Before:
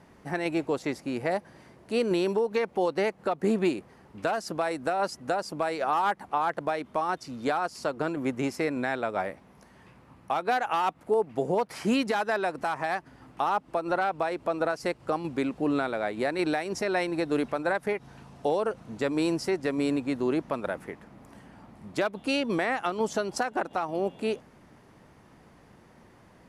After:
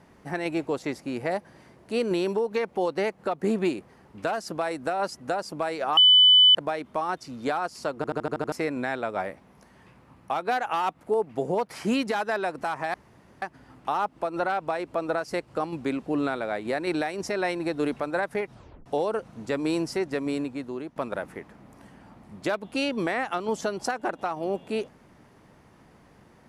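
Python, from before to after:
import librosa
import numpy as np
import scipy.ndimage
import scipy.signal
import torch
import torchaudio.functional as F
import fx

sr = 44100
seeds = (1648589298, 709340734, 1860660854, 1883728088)

y = fx.edit(x, sr, fx.bleep(start_s=5.97, length_s=0.58, hz=3000.0, db=-12.0),
    fx.stutter_over(start_s=7.96, slice_s=0.08, count=7),
    fx.insert_room_tone(at_s=12.94, length_s=0.48),
    fx.tape_stop(start_s=18.03, length_s=0.35),
    fx.fade_out_to(start_s=19.65, length_s=0.83, floor_db=-12.5), tone=tone)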